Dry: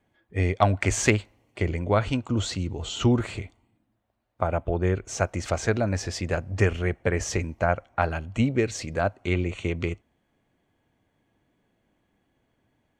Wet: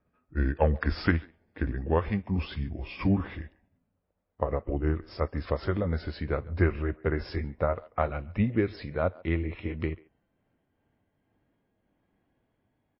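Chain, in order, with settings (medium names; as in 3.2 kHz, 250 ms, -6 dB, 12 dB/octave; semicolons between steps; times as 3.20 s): pitch bend over the whole clip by -5 st ending unshifted; low-pass 1.8 kHz 6 dB/octave; speakerphone echo 140 ms, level -22 dB; trim -1.5 dB; MP3 24 kbps 12 kHz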